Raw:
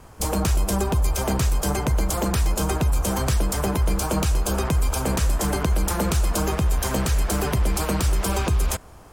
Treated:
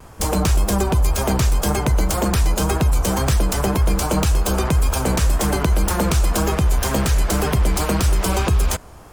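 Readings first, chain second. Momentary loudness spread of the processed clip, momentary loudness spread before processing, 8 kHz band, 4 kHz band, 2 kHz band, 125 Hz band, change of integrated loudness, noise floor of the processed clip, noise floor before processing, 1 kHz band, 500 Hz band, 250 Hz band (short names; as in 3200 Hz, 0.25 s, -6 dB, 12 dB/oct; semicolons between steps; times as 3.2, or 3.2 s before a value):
1 LU, 1 LU, +3.0 dB, +4.0 dB, +4.0 dB, +4.0 dB, +4.0 dB, -40 dBFS, -44 dBFS, +4.0 dB, +4.0 dB, +4.0 dB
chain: tracing distortion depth 0.045 ms; vibrato 1.9 Hz 49 cents; gain +4 dB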